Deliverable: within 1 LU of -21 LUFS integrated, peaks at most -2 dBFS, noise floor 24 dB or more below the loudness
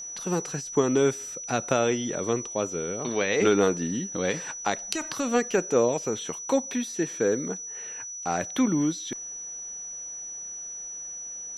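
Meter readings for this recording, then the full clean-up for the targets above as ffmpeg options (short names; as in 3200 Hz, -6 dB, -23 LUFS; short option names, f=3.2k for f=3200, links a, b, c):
steady tone 5900 Hz; tone level -35 dBFS; loudness -27.5 LUFS; peak -5.5 dBFS; loudness target -21.0 LUFS
-> -af "bandreject=f=5.9k:w=30"
-af "volume=6.5dB,alimiter=limit=-2dB:level=0:latency=1"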